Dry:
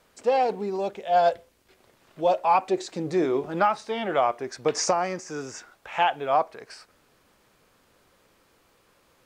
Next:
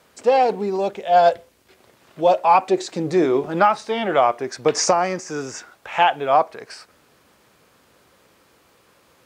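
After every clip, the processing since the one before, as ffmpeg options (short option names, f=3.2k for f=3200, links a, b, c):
-af "highpass=64,volume=6dB"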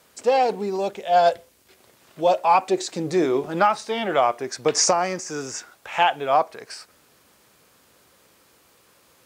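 -af "highshelf=f=4.6k:g=8.5,volume=-3dB"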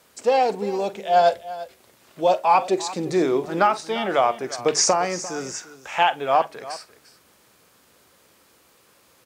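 -af "bandreject=f=50:t=h:w=6,bandreject=f=100:t=h:w=6,bandreject=f=150:t=h:w=6,aecho=1:1:45|347:0.141|0.158"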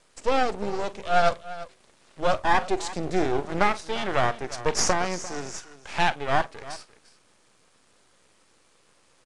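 -af "aeval=exprs='max(val(0),0)':c=same,aresample=22050,aresample=44100"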